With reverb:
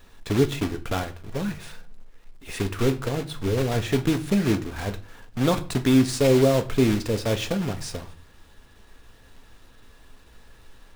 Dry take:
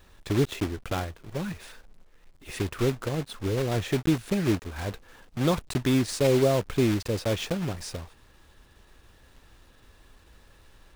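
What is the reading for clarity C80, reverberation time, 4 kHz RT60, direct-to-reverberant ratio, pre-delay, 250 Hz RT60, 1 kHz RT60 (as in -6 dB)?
21.0 dB, 0.40 s, 0.35 s, 8.0 dB, 4 ms, 0.60 s, 0.40 s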